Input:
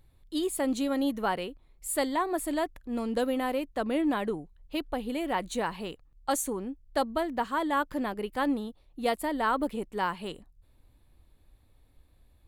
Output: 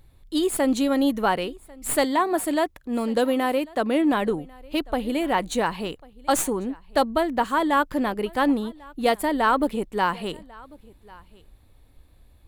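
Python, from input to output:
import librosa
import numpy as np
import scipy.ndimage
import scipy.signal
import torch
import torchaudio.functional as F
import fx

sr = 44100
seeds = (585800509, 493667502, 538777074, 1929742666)

y = fx.tracing_dist(x, sr, depth_ms=0.022)
y = fx.highpass(y, sr, hz=120.0, slope=6, at=(2.04, 4.12))
y = y + 10.0 ** (-24.0 / 20.0) * np.pad(y, (int(1095 * sr / 1000.0), 0))[:len(y)]
y = y * librosa.db_to_amplitude(7.0)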